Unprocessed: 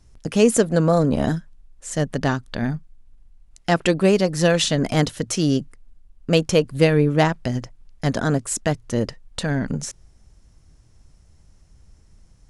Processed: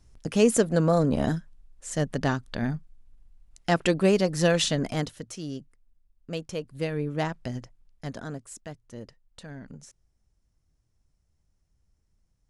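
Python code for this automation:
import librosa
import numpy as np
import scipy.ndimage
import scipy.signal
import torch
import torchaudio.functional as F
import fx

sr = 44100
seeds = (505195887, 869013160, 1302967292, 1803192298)

y = fx.gain(x, sr, db=fx.line((4.68, -4.5), (5.37, -16.0), (6.55, -16.0), (7.48, -9.0), (8.65, -19.0)))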